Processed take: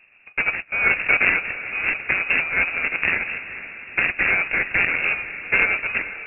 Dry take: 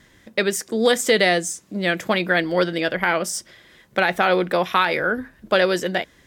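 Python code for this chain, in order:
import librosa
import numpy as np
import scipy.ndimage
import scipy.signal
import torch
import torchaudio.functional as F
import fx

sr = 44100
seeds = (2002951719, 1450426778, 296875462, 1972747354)

y = fx.sample_hold(x, sr, seeds[0], rate_hz=1700.0, jitter_pct=20)
y = fx.freq_invert(y, sr, carrier_hz=2700)
y = fx.echo_diffused(y, sr, ms=458, feedback_pct=59, wet_db=-13.5)
y = y * librosa.db_to_amplitude(-1.5)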